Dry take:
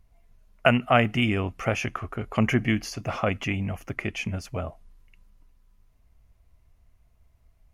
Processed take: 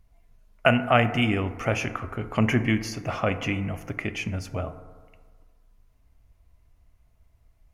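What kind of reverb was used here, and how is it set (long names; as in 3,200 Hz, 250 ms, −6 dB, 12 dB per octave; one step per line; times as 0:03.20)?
feedback delay network reverb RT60 1.6 s, low-frequency decay 0.8×, high-frequency decay 0.3×, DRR 9.5 dB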